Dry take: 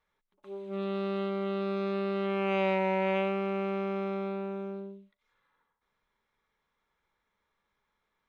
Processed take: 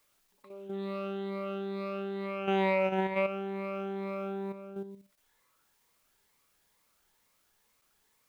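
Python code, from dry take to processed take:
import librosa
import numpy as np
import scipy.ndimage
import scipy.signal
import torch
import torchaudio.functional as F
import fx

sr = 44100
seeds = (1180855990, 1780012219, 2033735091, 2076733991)

y = fx.spec_ripple(x, sr, per_octave=0.96, drift_hz=2.2, depth_db=12)
y = fx.quant_dither(y, sr, seeds[0], bits=12, dither='triangular')
y = fx.level_steps(y, sr, step_db=9)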